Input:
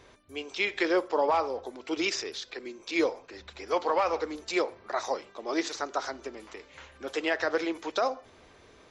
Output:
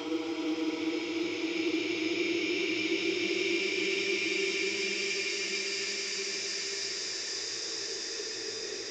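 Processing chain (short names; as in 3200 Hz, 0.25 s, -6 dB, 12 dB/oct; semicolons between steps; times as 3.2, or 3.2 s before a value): Paulstretch 31×, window 0.25 s, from 1.94; short-mantissa float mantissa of 6-bit; gain -2.5 dB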